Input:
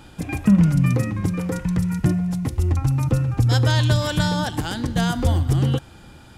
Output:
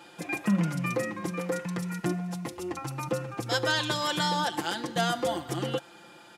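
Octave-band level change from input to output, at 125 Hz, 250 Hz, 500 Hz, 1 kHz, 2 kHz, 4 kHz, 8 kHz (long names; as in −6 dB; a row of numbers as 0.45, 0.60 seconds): −16.5, −10.0, −2.0, −1.0, −1.5, −2.0, −3.5 decibels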